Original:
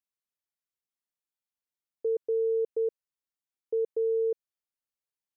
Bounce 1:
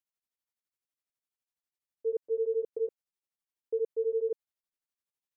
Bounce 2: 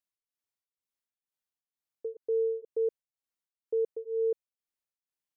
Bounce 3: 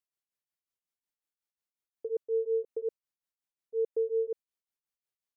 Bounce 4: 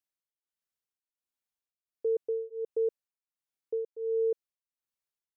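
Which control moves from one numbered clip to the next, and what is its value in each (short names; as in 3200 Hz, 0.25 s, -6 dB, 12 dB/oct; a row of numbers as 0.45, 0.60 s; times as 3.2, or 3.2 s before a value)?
beating tremolo, nulls at: 12, 2.1, 5.5, 1.4 Hz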